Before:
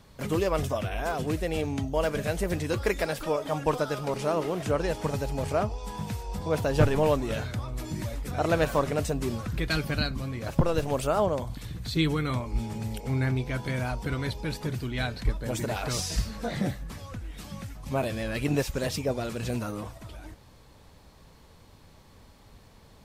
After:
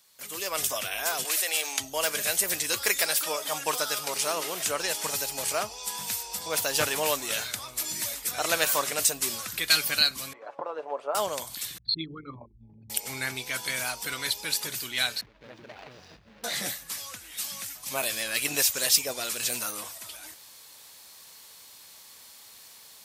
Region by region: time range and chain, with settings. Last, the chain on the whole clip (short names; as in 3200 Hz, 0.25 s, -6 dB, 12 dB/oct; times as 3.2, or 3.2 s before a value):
1.25–1.8 HPF 610 Hz + fast leveller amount 50%
10.33–11.15 Butterworth band-pass 650 Hz, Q 0.93 + comb 6.9 ms, depth 41%
11.78–12.9 formant sharpening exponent 3 + steep low-pass 4700 Hz + notches 50/100/150/200/250/300/350/400 Hz
15.21–16.44 median filter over 41 samples + air absorption 260 m + compressor 8:1, threshold -33 dBFS
whole clip: differentiator; AGC gain up to 12 dB; gain +4.5 dB